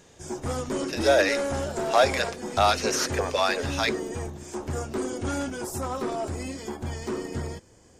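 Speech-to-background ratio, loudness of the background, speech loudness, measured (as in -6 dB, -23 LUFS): 6.5 dB, -31.5 LUFS, -25.0 LUFS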